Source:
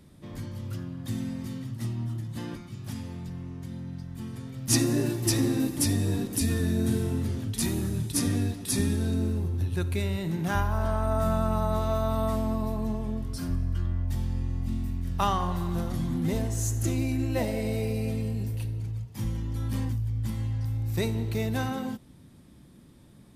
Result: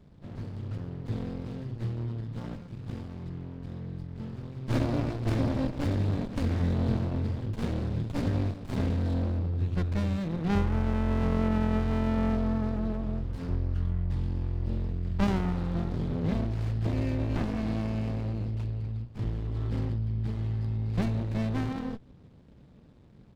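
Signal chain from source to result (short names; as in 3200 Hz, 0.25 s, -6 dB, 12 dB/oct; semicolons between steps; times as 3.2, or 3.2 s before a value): tracing distortion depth 0.33 ms; downsampling 11025 Hz; running maximum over 65 samples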